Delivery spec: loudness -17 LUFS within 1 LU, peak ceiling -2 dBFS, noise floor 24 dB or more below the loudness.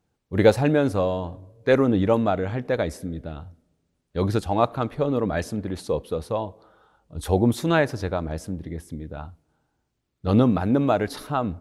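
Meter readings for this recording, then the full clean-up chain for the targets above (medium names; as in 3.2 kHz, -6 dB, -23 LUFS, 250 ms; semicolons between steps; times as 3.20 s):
loudness -23.5 LUFS; peak level -4.0 dBFS; loudness target -17.0 LUFS
-> trim +6.5 dB; peak limiter -2 dBFS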